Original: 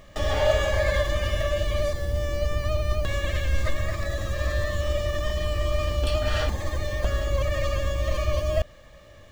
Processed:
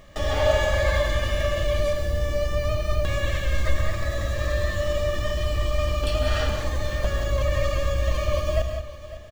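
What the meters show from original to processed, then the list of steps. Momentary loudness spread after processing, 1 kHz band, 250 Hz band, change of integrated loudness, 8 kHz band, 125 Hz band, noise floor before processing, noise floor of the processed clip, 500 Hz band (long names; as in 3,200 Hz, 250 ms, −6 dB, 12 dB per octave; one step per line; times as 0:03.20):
5 LU, +1.5 dB, +1.5 dB, +1.5 dB, +1.5 dB, +1.0 dB, −49 dBFS, −38 dBFS, +1.5 dB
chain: single-tap delay 553 ms −15.5 dB
reverb whose tail is shaped and stops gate 210 ms rising, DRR 5 dB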